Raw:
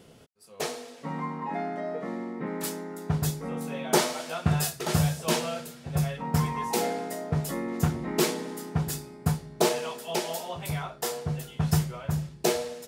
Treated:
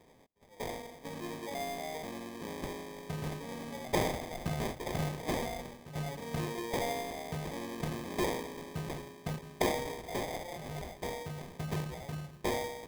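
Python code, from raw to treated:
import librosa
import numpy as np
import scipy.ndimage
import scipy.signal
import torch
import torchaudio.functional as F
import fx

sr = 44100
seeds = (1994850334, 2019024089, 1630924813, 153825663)

y = fx.low_shelf(x, sr, hz=180.0, db=-10.5)
y = fx.transient(y, sr, attack_db=-1, sustain_db=6)
y = fx.sample_hold(y, sr, seeds[0], rate_hz=1400.0, jitter_pct=0)
y = y * librosa.db_to_amplitude(-6.0)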